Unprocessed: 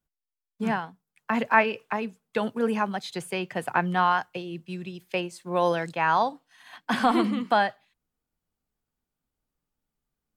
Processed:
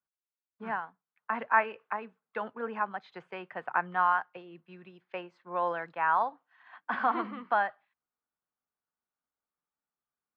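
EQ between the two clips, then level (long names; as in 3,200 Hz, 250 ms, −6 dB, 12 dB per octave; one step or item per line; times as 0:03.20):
resonant band-pass 1,300 Hz, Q 1.5
high-frequency loss of the air 170 metres
spectral tilt −1.5 dB per octave
0.0 dB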